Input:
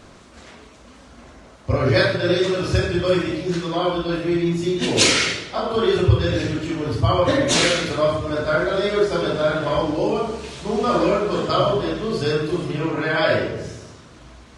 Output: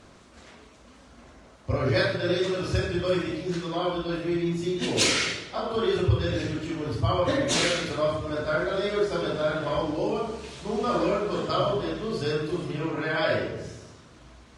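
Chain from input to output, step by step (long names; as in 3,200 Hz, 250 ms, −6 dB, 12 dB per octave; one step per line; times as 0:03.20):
soft clipping −4 dBFS, distortion −28 dB
harmonic generator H 3 −31 dB, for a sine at −5 dBFS
level −5.5 dB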